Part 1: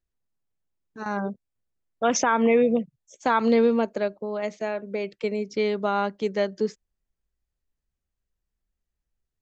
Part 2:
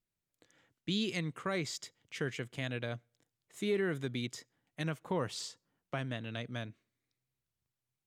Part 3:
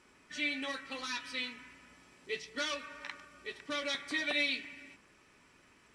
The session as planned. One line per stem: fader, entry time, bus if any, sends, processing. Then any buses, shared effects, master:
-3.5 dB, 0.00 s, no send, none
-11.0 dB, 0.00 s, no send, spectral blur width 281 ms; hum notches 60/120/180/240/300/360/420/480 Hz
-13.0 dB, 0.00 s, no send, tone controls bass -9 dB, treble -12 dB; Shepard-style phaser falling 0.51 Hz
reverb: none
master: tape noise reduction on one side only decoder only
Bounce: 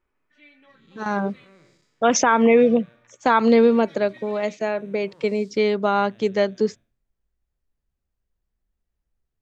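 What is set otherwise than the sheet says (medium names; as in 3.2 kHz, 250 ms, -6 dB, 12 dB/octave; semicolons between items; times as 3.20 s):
stem 1 -3.5 dB -> +4.5 dB; stem 3: missing Shepard-style phaser falling 0.51 Hz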